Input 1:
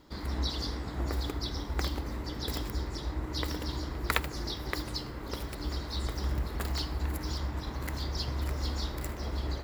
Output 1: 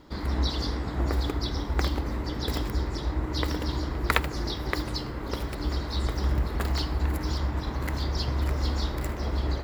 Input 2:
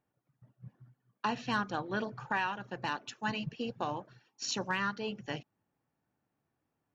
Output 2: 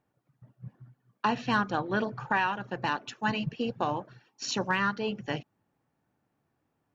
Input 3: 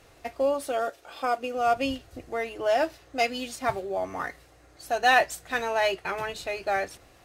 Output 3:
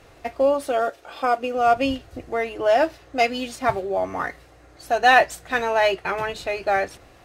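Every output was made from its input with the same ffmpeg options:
-af "highshelf=f=4300:g=-7,volume=2"

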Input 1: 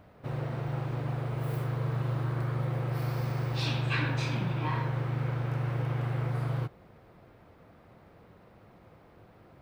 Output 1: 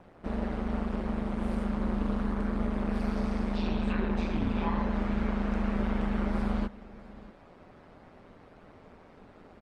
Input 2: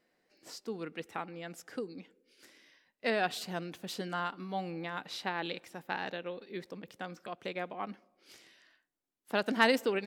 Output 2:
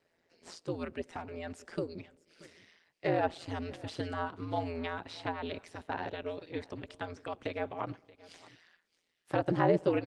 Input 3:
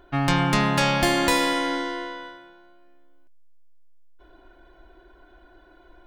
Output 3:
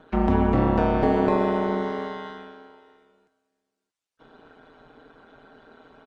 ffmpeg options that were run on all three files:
-filter_complex "[0:a]highpass=83,acrossover=split=3300[s0][s1];[s1]acompressor=threshold=0.00447:ratio=4:attack=1:release=60[s2];[s0][s2]amix=inputs=2:normalize=0,lowpass=f=8700:w=0.5412,lowpass=f=8700:w=1.3066,acrossover=split=510|940[s3][s4][s5];[s5]acompressor=threshold=0.00708:ratio=12[s6];[s3][s4][s6]amix=inputs=3:normalize=0,aeval=exprs='val(0)*sin(2*PI*84*n/s)':c=same,asplit=2[s7][s8];[s8]aecho=0:1:629:0.0944[s9];[s7][s9]amix=inputs=2:normalize=0,volume=2" -ar 48000 -c:a libopus -b:a 24k

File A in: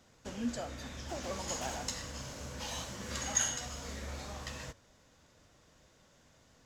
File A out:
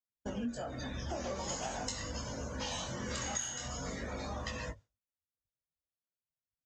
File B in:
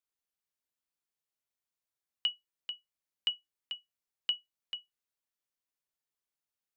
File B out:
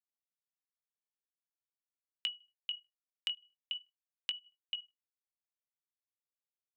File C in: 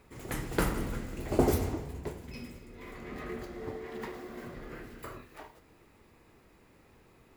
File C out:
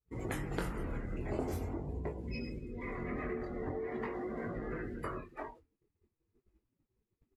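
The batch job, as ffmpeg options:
-filter_complex "[0:a]asplit=2[s0][s1];[s1]adelay=77,lowpass=f=2600:p=1,volume=0.1,asplit=2[s2][s3];[s3]adelay=77,lowpass=f=2600:p=1,volume=0.44,asplit=2[s4][s5];[s5]adelay=77,lowpass=f=2600:p=1,volume=0.44[s6];[s0][s2][s4][s6]amix=inputs=4:normalize=0,flanger=delay=18:depth=6.7:speed=0.44,afftdn=nr=20:nf=-52,agate=range=0.0224:threshold=0.00126:ratio=3:detection=peak,acompressor=threshold=0.00562:ratio=6,lowpass=11000,asoftclip=type=hard:threshold=0.0335,volume=3.16"

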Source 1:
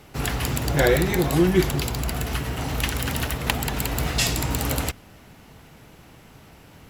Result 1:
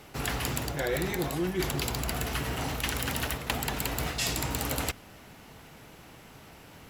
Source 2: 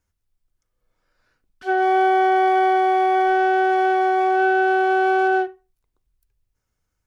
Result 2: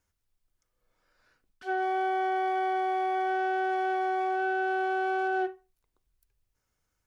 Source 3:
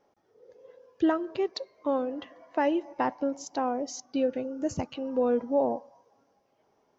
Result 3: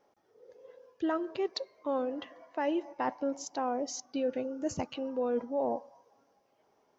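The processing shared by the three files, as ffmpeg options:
-af "lowshelf=f=240:g=-5.5,areverse,acompressor=threshold=0.0447:ratio=6,areverse"

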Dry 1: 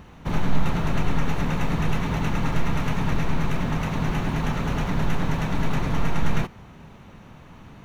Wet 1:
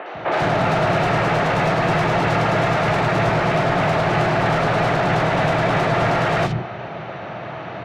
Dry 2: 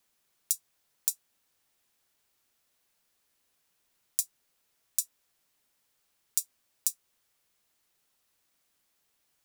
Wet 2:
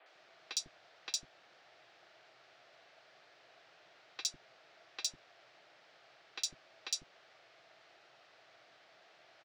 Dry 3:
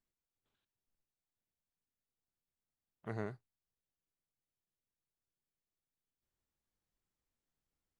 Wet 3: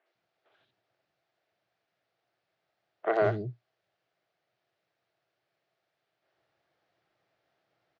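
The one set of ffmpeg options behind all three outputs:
-filter_complex "[0:a]highpass=100,equalizer=f=120:t=q:w=4:g=8,equalizer=f=240:t=q:w=4:g=-8,equalizer=f=340:t=q:w=4:g=5,equalizer=f=660:t=q:w=4:g=9,equalizer=f=1000:t=q:w=4:g=-7,lowpass=f=4700:w=0.5412,lowpass=f=4700:w=1.3066,asplit=2[s0][s1];[s1]highpass=f=720:p=1,volume=22.4,asoftclip=type=tanh:threshold=0.251[s2];[s0][s2]amix=inputs=2:normalize=0,lowpass=f=1900:p=1,volume=0.501,acrossover=split=310|3100[s3][s4][s5];[s5]adelay=60[s6];[s3]adelay=150[s7];[s7][s4][s6]amix=inputs=3:normalize=0,volume=1.33"

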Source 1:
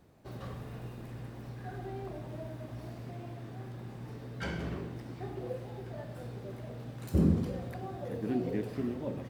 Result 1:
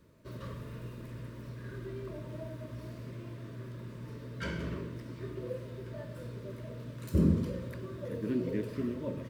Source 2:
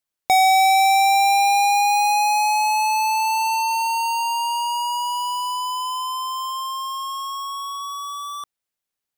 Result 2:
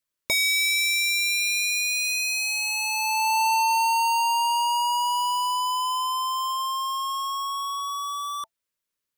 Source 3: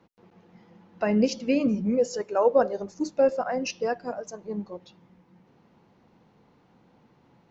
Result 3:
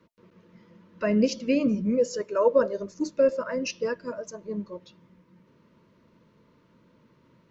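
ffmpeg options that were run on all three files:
-af "asuperstop=centerf=770:order=20:qfactor=3.7"

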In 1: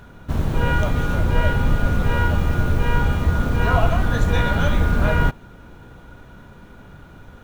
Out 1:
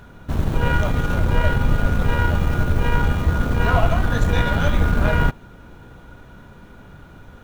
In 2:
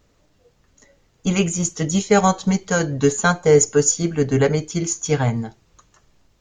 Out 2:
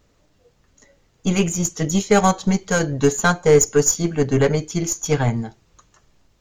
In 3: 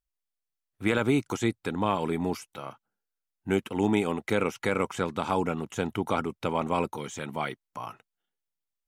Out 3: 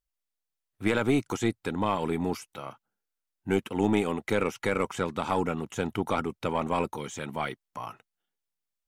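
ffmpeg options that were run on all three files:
-af "aeval=exprs='0.708*(cos(1*acos(clip(val(0)/0.708,-1,1)))-cos(1*PI/2))+0.0282*(cos(8*acos(clip(val(0)/0.708,-1,1)))-cos(8*PI/2))':c=same"

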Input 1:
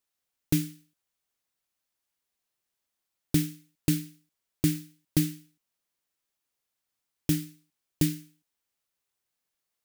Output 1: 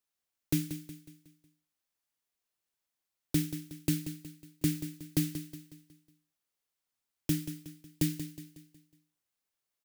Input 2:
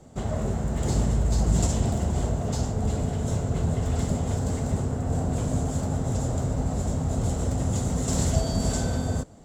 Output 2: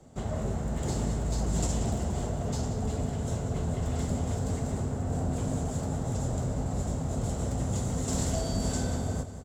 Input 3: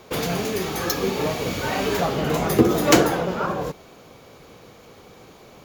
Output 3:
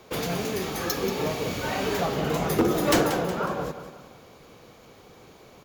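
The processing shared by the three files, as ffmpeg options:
-filter_complex "[0:a]acrossover=split=180[s0][s1];[s0]alimiter=limit=0.0794:level=0:latency=1[s2];[s2][s1]amix=inputs=2:normalize=0,aeval=exprs='0.355*(abs(mod(val(0)/0.355+3,4)-2)-1)':c=same,aecho=1:1:183|366|549|732|915:0.282|0.124|0.0546|0.024|0.0106,volume=0.631"

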